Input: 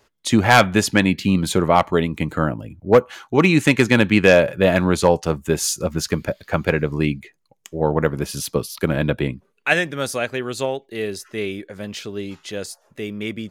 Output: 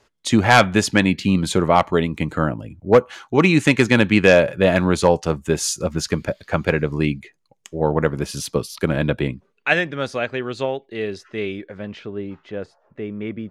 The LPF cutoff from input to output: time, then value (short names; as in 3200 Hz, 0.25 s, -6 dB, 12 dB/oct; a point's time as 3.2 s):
9.21 s 9800 Hz
9.88 s 3800 Hz
11.55 s 3800 Hz
12.17 s 1600 Hz